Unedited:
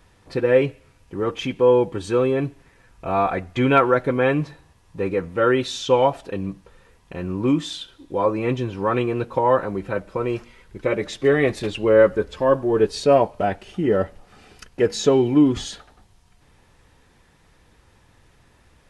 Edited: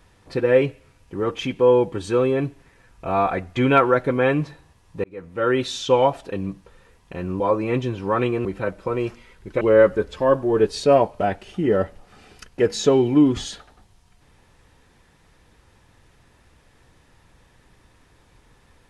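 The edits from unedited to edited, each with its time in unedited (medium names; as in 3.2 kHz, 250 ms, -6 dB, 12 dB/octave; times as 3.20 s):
5.04–5.62 s: fade in
7.40–8.15 s: delete
9.20–9.74 s: delete
10.90–11.81 s: delete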